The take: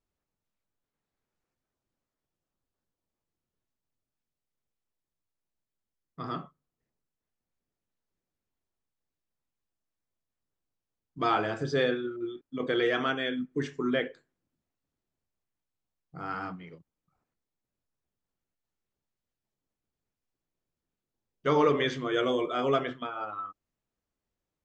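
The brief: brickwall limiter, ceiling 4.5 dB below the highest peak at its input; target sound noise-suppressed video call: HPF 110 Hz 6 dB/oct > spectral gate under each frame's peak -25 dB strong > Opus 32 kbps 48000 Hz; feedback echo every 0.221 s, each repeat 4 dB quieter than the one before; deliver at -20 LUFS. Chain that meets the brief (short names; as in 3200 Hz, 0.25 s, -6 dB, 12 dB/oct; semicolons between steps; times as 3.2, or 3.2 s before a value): limiter -17.5 dBFS; HPF 110 Hz 6 dB/oct; feedback echo 0.221 s, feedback 63%, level -4 dB; spectral gate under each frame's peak -25 dB strong; gain +10 dB; Opus 32 kbps 48000 Hz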